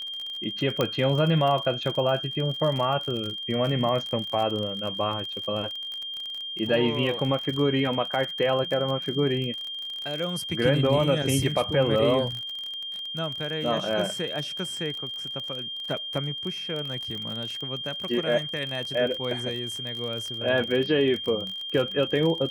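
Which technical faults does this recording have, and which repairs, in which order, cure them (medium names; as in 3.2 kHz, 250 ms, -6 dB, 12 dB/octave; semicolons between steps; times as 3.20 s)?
crackle 37 per s -30 dBFS
whine 3.2 kHz -32 dBFS
0.81 s: pop -10 dBFS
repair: de-click; band-stop 3.2 kHz, Q 30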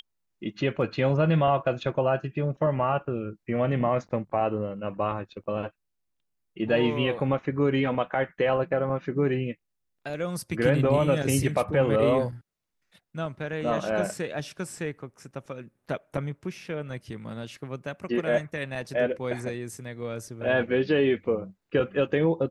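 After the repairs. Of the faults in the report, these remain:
0.81 s: pop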